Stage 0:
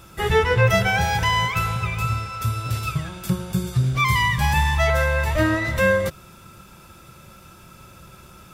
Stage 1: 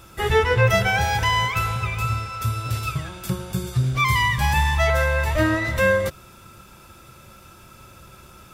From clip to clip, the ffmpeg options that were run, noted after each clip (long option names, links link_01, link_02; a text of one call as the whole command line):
ffmpeg -i in.wav -af "equalizer=frequency=170:width_type=o:width=0.32:gain=-7" out.wav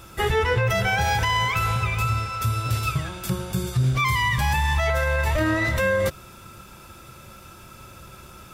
ffmpeg -i in.wav -af "alimiter=limit=-15.5dB:level=0:latency=1:release=59,volume=2dB" out.wav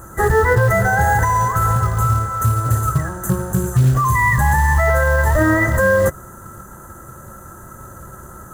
ffmpeg -i in.wav -af "afftfilt=real='re*(1-between(b*sr/4096,2000,6000))':imag='im*(1-between(b*sr/4096,2000,6000))':win_size=4096:overlap=0.75,acrusher=bits=6:mode=log:mix=0:aa=0.000001,volume=7.5dB" out.wav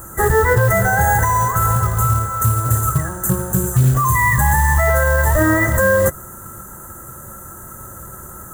ffmpeg -i in.wav -af "aexciter=amount=1.5:drive=9.3:freq=7100" out.wav